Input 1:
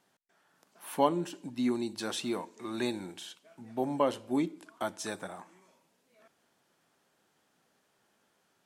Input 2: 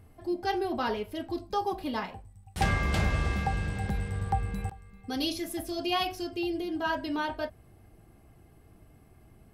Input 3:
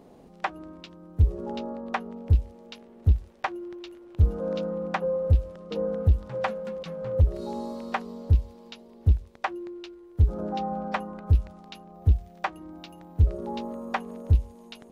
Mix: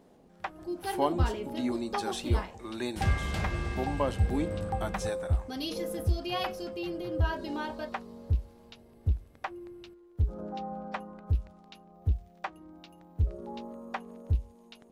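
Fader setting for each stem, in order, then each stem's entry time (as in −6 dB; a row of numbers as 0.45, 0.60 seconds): −2.0, −5.0, −7.5 decibels; 0.00, 0.40, 0.00 seconds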